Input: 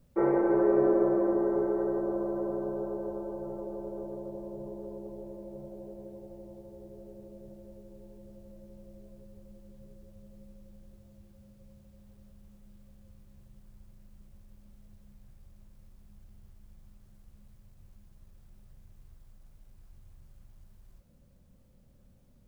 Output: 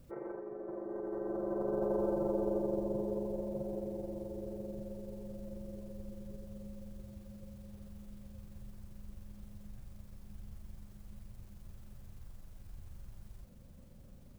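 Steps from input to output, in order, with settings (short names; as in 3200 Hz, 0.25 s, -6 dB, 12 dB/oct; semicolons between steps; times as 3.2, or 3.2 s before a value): negative-ratio compressor -36 dBFS, ratio -1; granular stretch 0.64×, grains 87 ms; gain +1.5 dB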